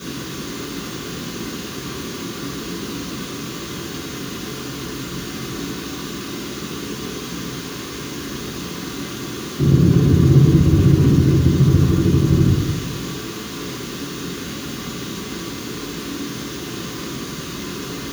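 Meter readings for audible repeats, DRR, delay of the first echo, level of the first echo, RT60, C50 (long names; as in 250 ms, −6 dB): no echo audible, −9.5 dB, no echo audible, no echo audible, 1.1 s, 0.5 dB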